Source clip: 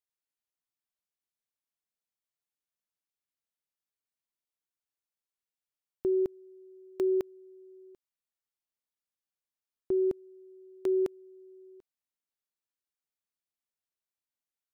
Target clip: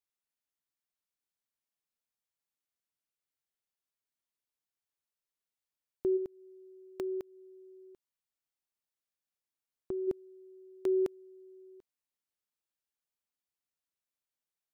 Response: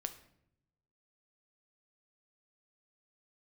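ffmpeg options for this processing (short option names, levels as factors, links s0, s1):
-filter_complex "[0:a]asplit=3[s0][s1][s2];[s0]afade=t=out:st=6.16:d=0.02[s3];[s1]acompressor=threshold=0.0158:ratio=2.5,afade=t=in:st=6.16:d=0.02,afade=t=out:st=10.07:d=0.02[s4];[s2]afade=t=in:st=10.07:d=0.02[s5];[s3][s4][s5]amix=inputs=3:normalize=0,volume=0.841"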